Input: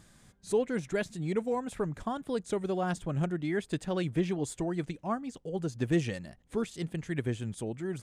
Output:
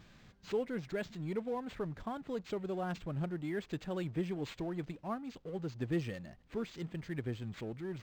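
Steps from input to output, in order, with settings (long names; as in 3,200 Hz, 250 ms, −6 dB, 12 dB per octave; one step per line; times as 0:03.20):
mu-law and A-law mismatch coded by mu
linearly interpolated sample-rate reduction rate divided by 4×
level −7.5 dB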